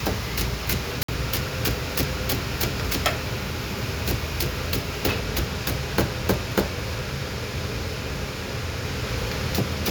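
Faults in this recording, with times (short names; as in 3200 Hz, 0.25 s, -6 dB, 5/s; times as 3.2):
1.03–1.08 gap 54 ms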